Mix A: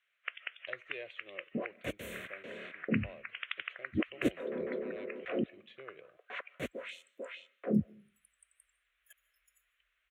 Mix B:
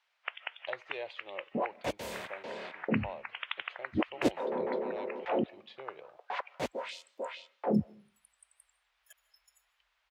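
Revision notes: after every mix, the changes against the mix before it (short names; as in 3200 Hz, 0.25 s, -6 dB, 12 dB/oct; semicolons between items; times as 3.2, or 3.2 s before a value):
master: remove fixed phaser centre 2100 Hz, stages 4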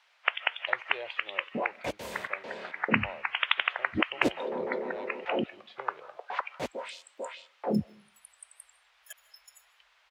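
first sound +11.5 dB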